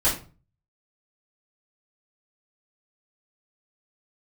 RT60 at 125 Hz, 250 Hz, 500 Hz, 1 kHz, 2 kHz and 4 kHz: 0.65, 0.45, 0.40, 0.35, 0.30, 0.25 s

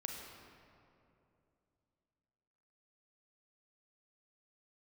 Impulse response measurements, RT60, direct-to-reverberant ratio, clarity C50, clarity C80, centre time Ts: 2.7 s, 1.0 dB, 2.0 dB, 3.0 dB, 87 ms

